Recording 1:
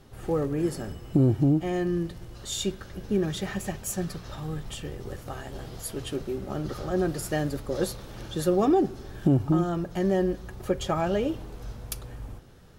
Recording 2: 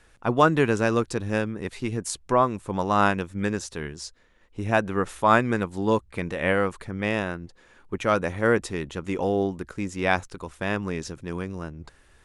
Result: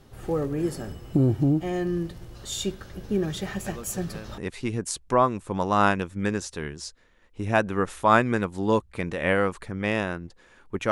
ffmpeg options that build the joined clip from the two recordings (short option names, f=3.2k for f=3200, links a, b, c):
-filter_complex "[1:a]asplit=2[a][b];[0:a]apad=whole_dur=10.91,atrim=end=10.91,atrim=end=4.382[c];[b]atrim=start=1.568:end=8.1[d];[a]atrim=start=0.85:end=1.57,asetpts=PTS-STARTPTS,volume=-16.5dB,afade=t=in:d=0.004:c=hsin,afade=t=out:st=0.716:d=0.004:c=hsin,adelay=3660[e];[c][d]acrossfade=d=0.004:c1=hsin:c2=hsin[f];[f][e]amix=inputs=2:normalize=0"